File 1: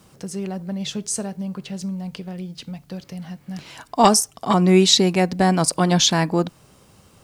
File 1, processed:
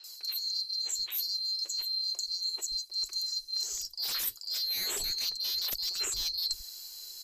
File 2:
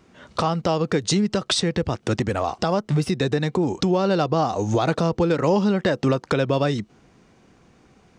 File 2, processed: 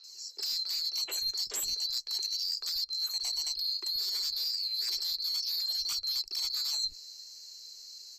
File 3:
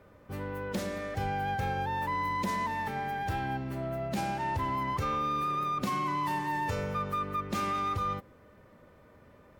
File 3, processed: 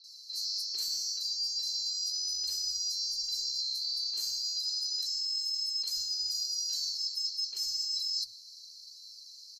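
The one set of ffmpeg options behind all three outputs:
ffmpeg -i in.wav -filter_complex "[0:a]afftfilt=real='real(if(lt(b,736),b+184*(1-2*mod(floor(b/184),2)),b),0)':imag='imag(if(lt(b,736),b+184*(1-2*mod(floor(b/184),2)),b),0)':win_size=2048:overlap=0.75,equalizer=frequency=390:width_type=o:width=0.57:gain=14,acrossover=split=250|3700[link_01][link_02][link_03];[link_03]adelay=40[link_04];[link_01]adelay=130[link_05];[link_05][link_02][link_04]amix=inputs=3:normalize=0,asubboost=boost=9:cutoff=54,acrossover=split=4100[link_06][link_07];[link_07]aeval=exprs='0.631*sin(PI/2*7.94*val(0)/0.631)':channel_layout=same[link_08];[link_06][link_08]amix=inputs=2:normalize=0,acrossover=split=140[link_09][link_10];[link_09]acompressor=threshold=-19dB:ratio=3[link_11];[link_11][link_10]amix=inputs=2:normalize=0,flanger=delay=0.7:depth=8.6:regen=53:speed=0.33:shape=sinusoidal,areverse,acompressor=threshold=-26dB:ratio=16,areverse,volume=-4.5dB" -ar 32000 -c:a libmp3lame -b:a 320k out.mp3

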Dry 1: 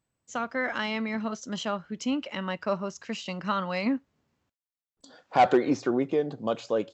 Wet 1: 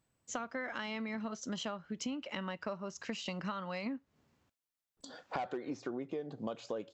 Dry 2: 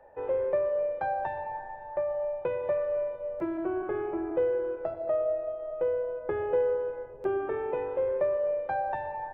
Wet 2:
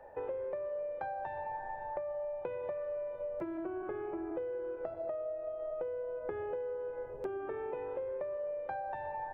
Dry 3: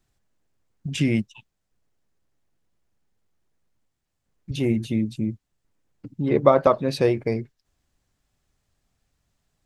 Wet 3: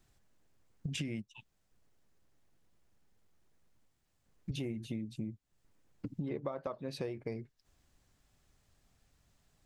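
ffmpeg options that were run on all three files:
ffmpeg -i in.wav -af "acompressor=threshold=-38dB:ratio=10,volume=2dB" out.wav

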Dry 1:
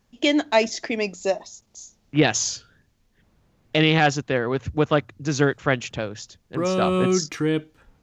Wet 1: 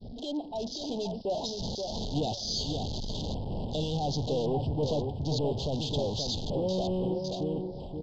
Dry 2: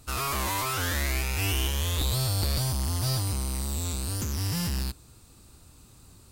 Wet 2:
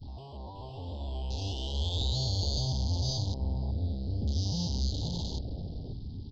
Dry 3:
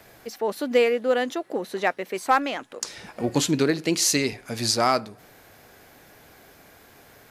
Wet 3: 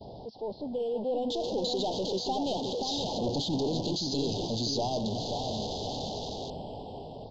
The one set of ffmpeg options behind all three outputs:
ffmpeg -i in.wav -filter_complex "[0:a]aeval=exprs='val(0)+0.5*0.0841*sgn(val(0))':channel_layout=same,aemphasis=mode=production:type=50kf,agate=range=-33dB:threshold=-14dB:ratio=3:detection=peak,equalizer=frequency=330:width_type=o:width=0.2:gain=-7.5,acompressor=threshold=-30dB:ratio=2,alimiter=limit=-23dB:level=0:latency=1:release=80,dynaudnorm=framelen=110:gausssize=21:maxgain=8dB,aresample=11025,asoftclip=type=tanh:threshold=-25dB,aresample=44100,aeval=exprs='val(0)+0.000631*(sin(2*PI*60*n/s)+sin(2*PI*2*60*n/s)/2+sin(2*PI*3*60*n/s)/3+sin(2*PI*4*60*n/s)/4+sin(2*PI*5*60*n/s)/5)':channel_layout=same,asplit=2[link_01][link_02];[link_02]adelay=527,lowpass=frequency=2100:poles=1,volume=-5dB,asplit=2[link_03][link_04];[link_04]adelay=527,lowpass=frequency=2100:poles=1,volume=0.29,asplit=2[link_05][link_06];[link_06]adelay=527,lowpass=frequency=2100:poles=1,volume=0.29,asplit=2[link_07][link_08];[link_08]adelay=527,lowpass=frequency=2100:poles=1,volume=0.29[link_09];[link_03][link_05][link_07][link_09]amix=inputs=4:normalize=0[link_10];[link_01][link_10]amix=inputs=2:normalize=0,afwtdn=0.0112,asuperstop=centerf=1700:order=12:qfactor=0.73" out.wav

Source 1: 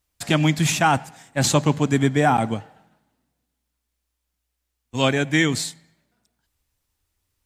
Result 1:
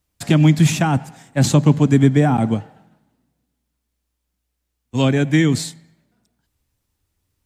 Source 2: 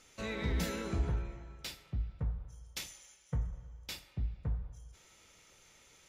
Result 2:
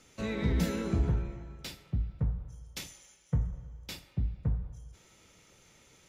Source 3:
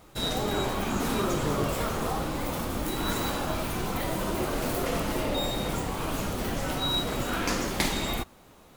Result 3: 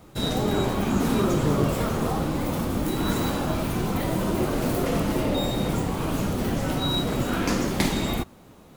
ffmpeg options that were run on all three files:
ffmpeg -i in.wav -filter_complex "[0:a]equalizer=frequency=170:width_type=o:width=2.9:gain=8,acrossover=split=360[link_01][link_02];[link_02]acompressor=threshold=-19dB:ratio=6[link_03];[link_01][link_03]amix=inputs=2:normalize=0" out.wav

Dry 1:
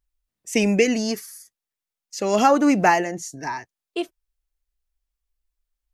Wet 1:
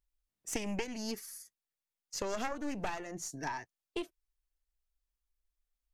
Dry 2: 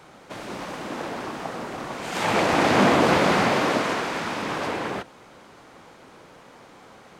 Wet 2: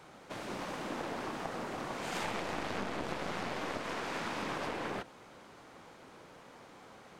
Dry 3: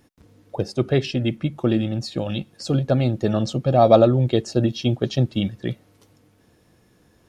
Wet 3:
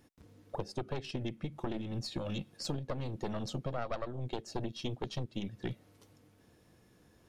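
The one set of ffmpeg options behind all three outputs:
ffmpeg -i in.wav -af "aeval=exprs='0.891*(cos(1*acos(clip(val(0)/0.891,-1,1)))-cos(1*PI/2))+0.355*(cos(4*acos(clip(val(0)/0.891,-1,1)))-cos(4*PI/2))':channel_layout=same,acompressor=threshold=-27dB:ratio=8,volume=-6dB" out.wav

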